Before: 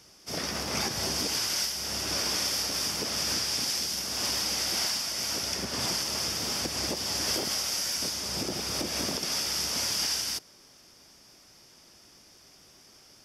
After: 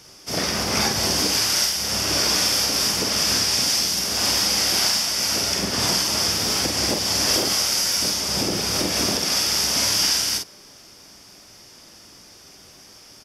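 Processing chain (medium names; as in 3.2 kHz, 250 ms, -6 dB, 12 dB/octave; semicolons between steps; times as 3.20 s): early reflections 37 ms -9.5 dB, 47 ms -5.5 dB; trim +7.5 dB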